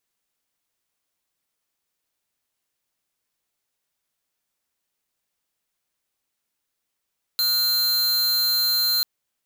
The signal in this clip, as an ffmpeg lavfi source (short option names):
-f lavfi -i "aevalsrc='0.0891*(2*lt(mod(4140*t,1),0.5)-1)':d=1.64:s=44100"